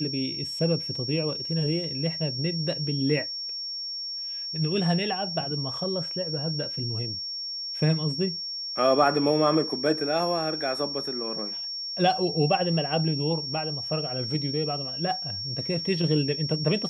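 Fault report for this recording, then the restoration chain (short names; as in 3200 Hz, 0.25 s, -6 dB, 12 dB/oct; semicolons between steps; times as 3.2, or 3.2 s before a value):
tone 5500 Hz -31 dBFS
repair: notch 5500 Hz, Q 30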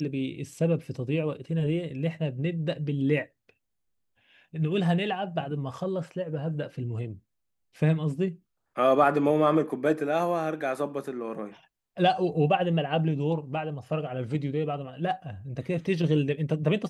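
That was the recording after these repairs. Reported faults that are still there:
none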